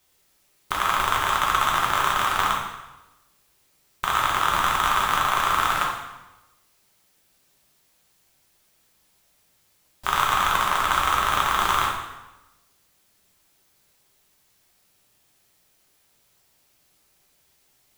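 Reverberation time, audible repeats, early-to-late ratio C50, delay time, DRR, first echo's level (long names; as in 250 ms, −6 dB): 1.0 s, no echo audible, 2.5 dB, no echo audible, −3.5 dB, no echo audible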